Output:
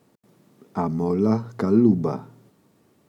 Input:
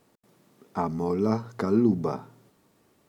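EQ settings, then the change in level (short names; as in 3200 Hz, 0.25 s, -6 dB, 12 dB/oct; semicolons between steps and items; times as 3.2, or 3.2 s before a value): HPF 99 Hz; low shelf 350 Hz +8 dB; 0.0 dB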